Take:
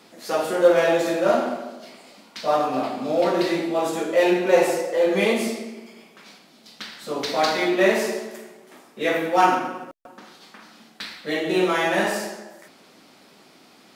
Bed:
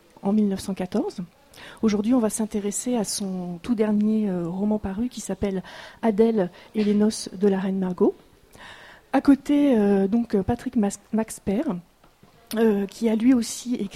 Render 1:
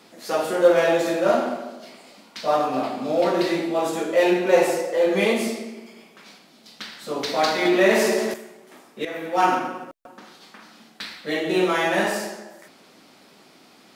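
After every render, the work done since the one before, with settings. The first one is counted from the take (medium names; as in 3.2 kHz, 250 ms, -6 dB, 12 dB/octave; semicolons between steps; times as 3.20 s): 7.65–8.34 s: level flattener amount 50%; 9.05–9.57 s: fade in, from -13.5 dB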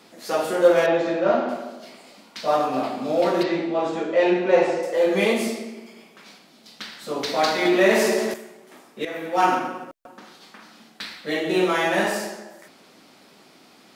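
0.86–1.49 s: distance through air 170 m; 3.43–4.83 s: distance through air 140 m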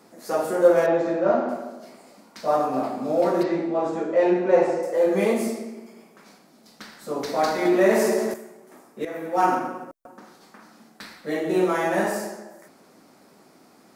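peaking EQ 3.2 kHz -12.5 dB 1.3 oct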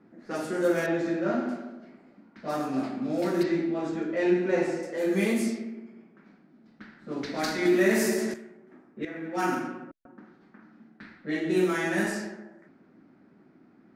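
level-controlled noise filter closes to 1.2 kHz, open at -17.5 dBFS; high-order bell 720 Hz -11 dB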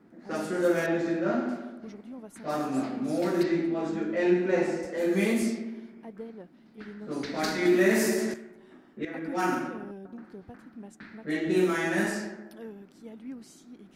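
add bed -23 dB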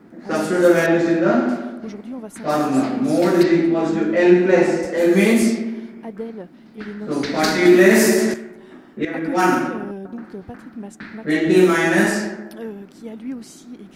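trim +11 dB; peak limiter -2 dBFS, peak gain reduction 1 dB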